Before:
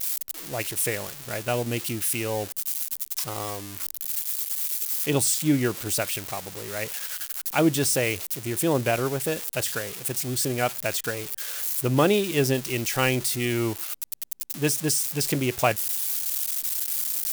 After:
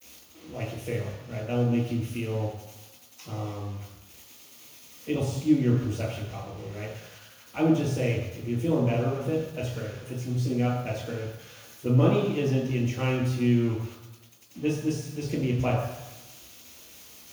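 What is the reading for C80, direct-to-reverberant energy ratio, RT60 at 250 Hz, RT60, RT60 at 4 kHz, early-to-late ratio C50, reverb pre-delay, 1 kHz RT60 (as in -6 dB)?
5.0 dB, -13.5 dB, 1.0 s, 1.0 s, 1.1 s, 2.0 dB, 3 ms, 1.1 s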